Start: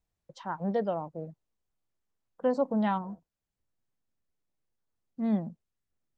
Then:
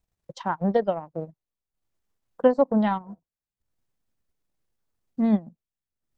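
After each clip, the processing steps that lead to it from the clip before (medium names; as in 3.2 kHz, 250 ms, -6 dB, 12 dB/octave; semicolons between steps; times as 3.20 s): transient shaper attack +6 dB, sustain -12 dB; trim +4.5 dB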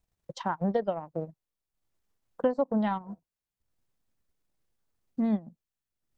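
compression 2:1, threshold -28 dBFS, peak gain reduction 8.5 dB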